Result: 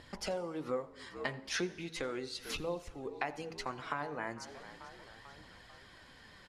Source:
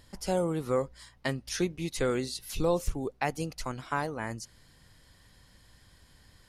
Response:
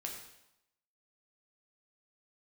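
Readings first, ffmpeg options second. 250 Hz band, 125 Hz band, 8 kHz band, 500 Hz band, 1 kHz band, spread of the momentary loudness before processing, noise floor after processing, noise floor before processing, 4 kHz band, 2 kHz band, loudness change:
−9.0 dB, −13.0 dB, −7.5 dB, −8.0 dB, −6.0 dB, 9 LU, −57 dBFS, −61 dBFS, −2.5 dB, −2.5 dB, −7.5 dB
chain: -filter_complex "[0:a]lowpass=2500,asplit=5[link_01][link_02][link_03][link_04][link_05];[link_02]adelay=443,afreqshift=-55,volume=-23dB[link_06];[link_03]adelay=886,afreqshift=-110,volume=-27.6dB[link_07];[link_04]adelay=1329,afreqshift=-165,volume=-32.2dB[link_08];[link_05]adelay=1772,afreqshift=-220,volume=-36.7dB[link_09];[link_01][link_06][link_07][link_08][link_09]amix=inputs=5:normalize=0,acompressor=threshold=-41dB:ratio=6,aemphasis=mode=production:type=bsi,bandreject=frequency=53.76:width_type=h:width=4,bandreject=frequency=107.52:width_type=h:width=4,bandreject=frequency=161.28:width_type=h:width=4,bandreject=frequency=215.04:width_type=h:width=4,bandreject=frequency=268.8:width_type=h:width=4,bandreject=frequency=322.56:width_type=h:width=4,bandreject=frequency=376.32:width_type=h:width=4,bandreject=frequency=430.08:width_type=h:width=4,bandreject=frequency=483.84:width_type=h:width=4,bandreject=frequency=537.6:width_type=h:width=4,bandreject=frequency=591.36:width_type=h:width=4,bandreject=frequency=645.12:width_type=h:width=4,bandreject=frequency=698.88:width_type=h:width=4,bandreject=frequency=752.64:width_type=h:width=4,bandreject=frequency=806.4:width_type=h:width=4,bandreject=frequency=860.16:width_type=h:width=4,bandreject=frequency=913.92:width_type=h:width=4,bandreject=frequency=967.68:width_type=h:width=4,bandreject=frequency=1021.44:width_type=h:width=4,asplit=2[link_10][link_11];[1:a]atrim=start_sample=2205,asetrate=29547,aresample=44100,adelay=84[link_12];[link_11][link_12]afir=irnorm=-1:irlink=0,volume=-19.5dB[link_13];[link_10][link_13]amix=inputs=2:normalize=0,flanger=delay=0.1:depth=7:regen=69:speed=0.37:shape=triangular,volume=12dB"

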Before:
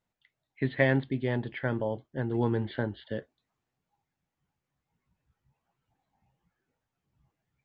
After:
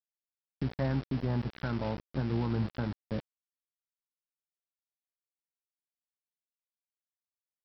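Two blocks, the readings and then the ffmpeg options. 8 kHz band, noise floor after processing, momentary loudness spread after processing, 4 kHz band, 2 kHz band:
can't be measured, below −85 dBFS, 7 LU, −3.0 dB, −11.5 dB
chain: -af "firequalizer=gain_entry='entry(200,0);entry(420,-10);entry(1300,3);entry(1800,-18);entry(3300,-27)':delay=0.05:min_phase=1,alimiter=level_in=3.5dB:limit=-24dB:level=0:latency=1:release=218,volume=-3.5dB,aeval=exprs='val(0)+0.00398*(sin(2*PI*60*n/s)+sin(2*PI*2*60*n/s)/2+sin(2*PI*3*60*n/s)/3+sin(2*PI*4*60*n/s)/4+sin(2*PI*5*60*n/s)/5)':channel_layout=same,aresample=11025,aeval=exprs='val(0)*gte(abs(val(0)),0.00794)':channel_layout=same,aresample=44100,volume=5.5dB"

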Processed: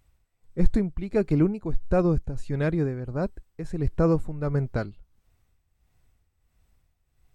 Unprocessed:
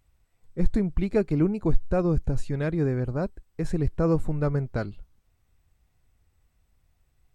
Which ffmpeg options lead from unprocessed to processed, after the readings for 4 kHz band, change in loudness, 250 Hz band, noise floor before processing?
can't be measured, +0.5 dB, +0.5 dB, −69 dBFS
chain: -af "tremolo=f=1.5:d=0.65,volume=2.5dB"

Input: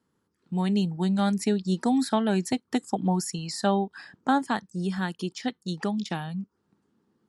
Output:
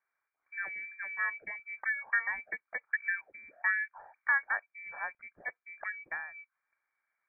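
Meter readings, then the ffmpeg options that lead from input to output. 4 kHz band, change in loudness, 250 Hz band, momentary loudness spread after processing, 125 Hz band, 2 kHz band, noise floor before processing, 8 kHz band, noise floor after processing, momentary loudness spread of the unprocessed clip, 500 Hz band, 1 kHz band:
below −40 dB, −7.0 dB, below −40 dB, 12 LU, below −40 dB, +8.5 dB, −76 dBFS, below −40 dB, below −85 dBFS, 8 LU, −24.5 dB, −12.5 dB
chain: -af "lowshelf=frequency=520:width_type=q:width=3:gain=-9,lowpass=frequency=2100:width_type=q:width=0.5098,lowpass=frequency=2100:width_type=q:width=0.6013,lowpass=frequency=2100:width_type=q:width=0.9,lowpass=frequency=2100:width_type=q:width=2.563,afreqshift=-2500,volume=-7dB"

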